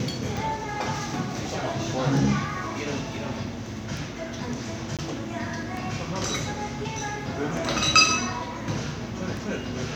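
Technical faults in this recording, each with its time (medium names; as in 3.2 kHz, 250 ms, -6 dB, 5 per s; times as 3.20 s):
tick
4.97–4.99 s: dropout 17 ms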